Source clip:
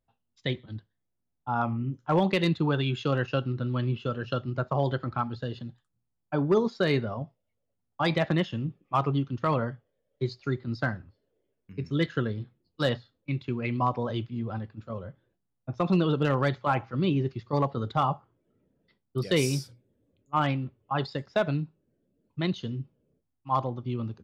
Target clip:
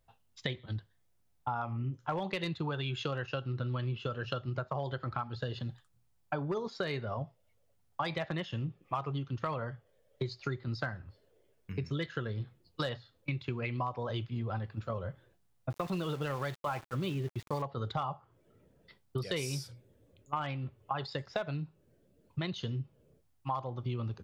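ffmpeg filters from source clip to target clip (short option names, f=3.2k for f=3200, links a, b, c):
-filter_complex "[0:a]equalizer=f=250:t=o:w=1.2:g=-8.5,asplit=2[a][b];[b]alimiter=limit=-23dB:level=0:latency=1:release=273,volume=-1dB[c];[a][c]amix=inputs=2:normalize=0,acompressor=threshold=-37dB:ratio=6,asettb=1/sr,asplit=3[d][e][f];[d]atrim=end=15.704[g];[e]atrim=start=15.7:end=17.62,asetpts=PTS-STARTPTS,afade=t=in:d=0.004:c=qsin,afade=t=out:st=1.916:d=0.004:c=qsin,aeval=exprs='val(0)*gte(abs(val(0)),0.00335)':c=same[h];[f]atrim=start=17.616[i];[g][h]acrossfade=d=0.004:c1=hsin:c2=qsin[j];[j][i]acrossfade=d=0.004:c1=qsin:c2=hsin,volume=4dB"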